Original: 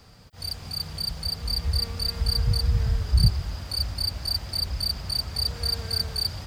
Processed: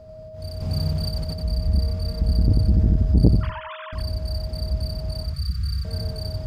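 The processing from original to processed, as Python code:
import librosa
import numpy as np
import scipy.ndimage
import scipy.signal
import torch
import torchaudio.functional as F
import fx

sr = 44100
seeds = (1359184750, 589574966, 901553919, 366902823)

p1 = fx.sine_speech(x, sr, at=(3.41, 3.93))
p2 = fx.tilt_shelf(p1, sr, db=9.5, hz=640.0)
p3 = fx.over_compress(p2, sr, threshold_db=-29.0, ratio=-1.0, at=(0.6, 1.31), fade=0.02)
p4 = p3 + 10.0 ** (-40.0 / 20.0) * np.sin(2.0 * np.pi * 630.0 * np.arange(len(p3)) / sr)
p5 = fx.brickwall_bandstop(p4, sr, low_hz=200.0, high_hz=1100.0, at=(5.24, 5.85))
p6 = p5 + fx.echo_feedback(p5, sr, ms=92, feedback_pct=21, wet_db=-4.0, dry=0)
p7 = fx.transformer_sat(p6, sr, knee_hz=220.0)
y = p7 * librosa.db_to_amplitude(-3.0)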